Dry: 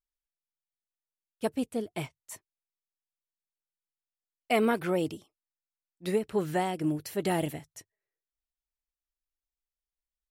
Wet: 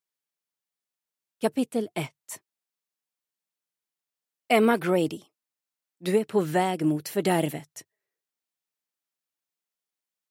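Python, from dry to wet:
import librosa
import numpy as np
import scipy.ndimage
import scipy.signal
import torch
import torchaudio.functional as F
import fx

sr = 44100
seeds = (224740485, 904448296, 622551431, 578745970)

y = scipy.signal.sosfilt(scipy.signal.butter(4, 130.0, 'highpass', fs=sr, output='sos'), x)
y = y * librosa.db_to_amplitude(5.0)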